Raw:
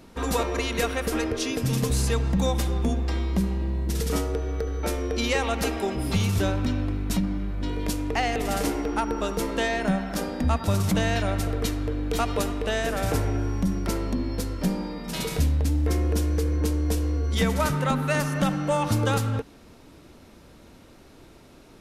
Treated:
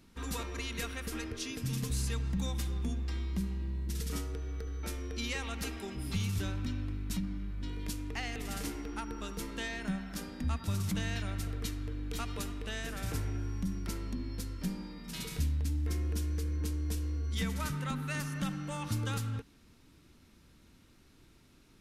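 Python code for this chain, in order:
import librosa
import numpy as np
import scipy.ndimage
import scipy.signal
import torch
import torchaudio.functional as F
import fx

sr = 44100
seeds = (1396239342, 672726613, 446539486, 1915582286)

y = fx.peak_eq(x, sr, hz=610.0, db=-12.0, octaves=1.5)
y = y * 10.0 ** (-8.5 / 20.0)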